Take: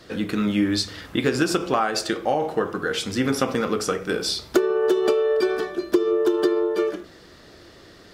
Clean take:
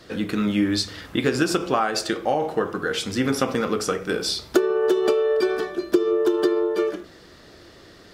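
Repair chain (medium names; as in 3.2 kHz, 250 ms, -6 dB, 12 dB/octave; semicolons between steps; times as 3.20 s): clip repair -9 dBFS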